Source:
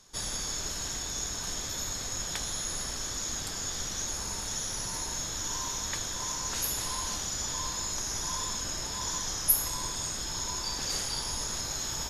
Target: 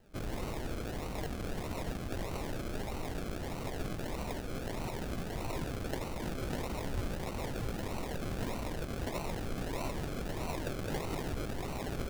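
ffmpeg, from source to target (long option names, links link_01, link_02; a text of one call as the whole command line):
ffmpeg -i in.wav -af "lowpass=frequency=8700:width=0.5412,lowpass=frequency=8700:width=1.3066,aemphasis=mode=reproduction:type=50fm,bandreject=frequency=6200:width=16,acrusher=samples=37:mix=1:aa=0.000001:lfo=1:lforange=22.2:lforate=1.6,volume=1dB" out.wav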